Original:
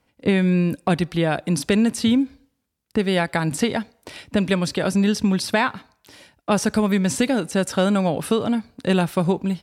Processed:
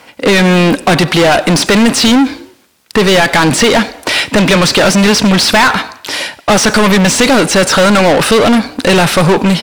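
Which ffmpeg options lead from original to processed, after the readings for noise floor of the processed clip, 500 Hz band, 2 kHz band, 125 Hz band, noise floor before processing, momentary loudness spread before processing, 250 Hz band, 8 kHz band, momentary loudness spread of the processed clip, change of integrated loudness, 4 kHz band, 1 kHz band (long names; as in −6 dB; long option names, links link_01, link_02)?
−44 dBFS, +12.5 dB, +16.5 dB, +9.5 dB, −72 dBFS, 6 LU, +9.5 dB, +16.5 dB, 5 LU, +12.0 dB, +18.5 dB, +15.0 dB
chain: -filter_complex "[0:a]asplit=2[link_01][link_02];[link_02]highpass=frequency=720:poles=1,volume=33dB,asoftclip=type=tanh:threshold=-6dB[link_03];[link_01][link_03]amix=inputs=2:normalize=0,lowpass=frequency=6700:poles=1,volume=-6dB,asplit=4[link_04][link_05][link_06][link_07];[link_05]adelay=93,afreqshift=33,volume=-23.5dB[link_08];[link_06]adelay=186,afreqshift=66,volume=-29dB[link_09];[link_07]adelay=279,afreqshift=99,volume=-34.5dB[link_10];[link_04][link_08][link_09][link_10]amix=inputs=4:normalize=0,acrossover=split=8200[link_11][link_12];[link_12]acompressor=threshold=-30dB:ratio=4:attack=1:release=60[link_13];[link_11][link_13]amix=inputs=2:normalize=0,volume=5dB"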